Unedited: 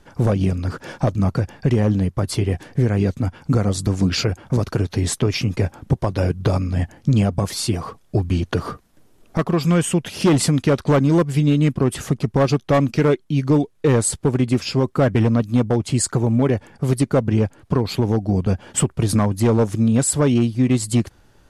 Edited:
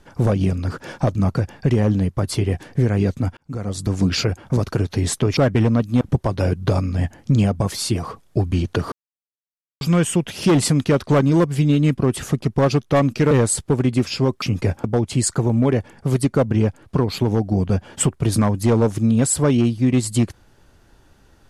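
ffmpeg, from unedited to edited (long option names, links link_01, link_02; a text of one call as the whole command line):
ffmpeg -i in.wav -filter_complex "[0:a]asplit=9[link_01][link_02][link_03][link_04][link_05][link_06][link_07][link_08][link_09];[link_01]atrim=end=3.37,asetpts=PTS-STARTPTS,afade=type=out:start_time=3.366:duration=0.004:curve=hsin[link_10];[link_02]atrim=start=3.37:end=5.372,asetpts=PTS-STARTPTS,afade=type=in:duration=0.63[link_11];[link_03]atrim=start=14.968:end=15.612[link_12];[link_04]atrim=start=5.788:end=8.7,asetpts=PTS-STARTPTS,afade=type=out:start_time=2.908:duration=0.004:curve=hsin[link_13];[link_05]atrim=start=8.7:end=9.59,asetpts=PTS-STARTPTS,volume=0[link_14];[link_06]atrim=start=9.59:end=13.092,asetpts=PTS-STARTPTS,afade=type=in:duration=0.004:curve=hsin[link_15];[link_07]atrim=start=13.858:end=14.972[link_16];[link_08]atrim=start=5.368:end=5.792[link_17];[link_09]atrim=start=15.608[link_18];[link_10][link_11]concat=n=2:v=0:a=1[link_19];[link_19][link_12]acrossfade=duration=0.004:curve1=hsin:curve2=hsin[link_20];[link_13][link_14][link_15]concat=n=3:v=0:a=1[link_21];[link_20][link_21]acrossfade=duration=0.004:curve1=hsin:curve2=hsin[link_22];[link_22][link_16]acrossfade=duration=0.004:curve1=hsin:curve2=hsin[link_23];[link_23][link_17]acrossfade=duration=0.004:curve1=hsin:curve2=hsin[link_24];[link_24][link_18]acrossfade=duration=0.004:curve1=hsin:curve2=hsin" out.wav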